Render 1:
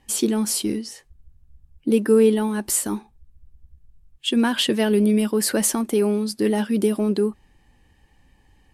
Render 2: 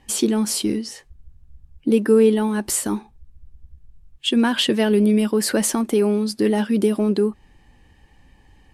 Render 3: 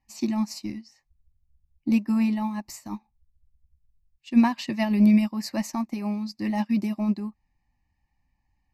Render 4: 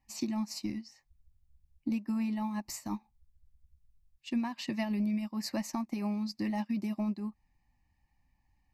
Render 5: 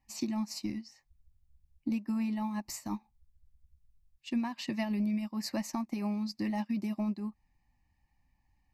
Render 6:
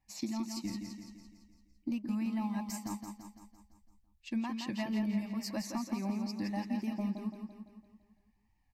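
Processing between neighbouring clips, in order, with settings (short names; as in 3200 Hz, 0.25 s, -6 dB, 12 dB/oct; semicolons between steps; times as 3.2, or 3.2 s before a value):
high shelf 9600 Hz -8 dB; in parallel at -2.5 dB: compressor, threshold -28 dBFS, peak gain reduction 15.5 dB
fixed phaser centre 2200 Hz, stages 8; upward expander 2.5:1, over -34 dBFS; gain +5 dB
compressor 5:1, threshold -31 dBFS, peak gain reduction 16 dB
nothing audible
wow and flutter 84 cents; on a send: feedback echo 0.169 s, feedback 53%, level -6 dB; on the sum: gain -3 dB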